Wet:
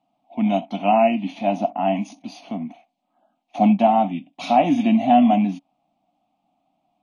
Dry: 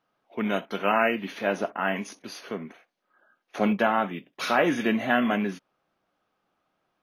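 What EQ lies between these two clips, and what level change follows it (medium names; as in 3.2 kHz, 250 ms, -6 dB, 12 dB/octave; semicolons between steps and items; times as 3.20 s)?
FFT filter 100 Hz 0 dB, 280 Hz +12 dB, 430 Hz -19 dB, 720 Hz +14 dB, 1.6 kHz -21 dB, 2.4 kHz +1 dB, 3.7 kHz 0 dB, 5.7 kHz -5 dB, 8.1 kHz +2 dB, 13 kHz -25 dB; 0.0 dB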